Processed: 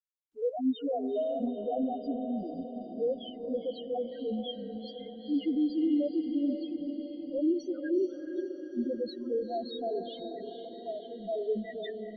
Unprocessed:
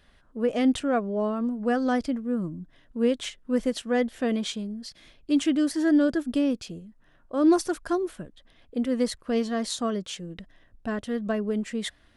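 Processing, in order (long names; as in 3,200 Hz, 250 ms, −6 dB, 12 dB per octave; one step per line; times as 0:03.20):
high-pass filter 350 Hz 12 dB per octave
noise gate −54 dBFS, range −31 dB
noise reduction from a noise print of the clip's start 13 dB
high-shelf EQ 6,600 Hz −8 dB
brickwall limiter −22.5 dBFS, peak gain reduction 9 dB
spectral peaks only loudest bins 1
on a send: feedback delay with all-pass diffusion 460 ms, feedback 64%, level −7.5 dB
on the sum: level +6.5 dB
Opus 24 kbit/s 48,000 Hz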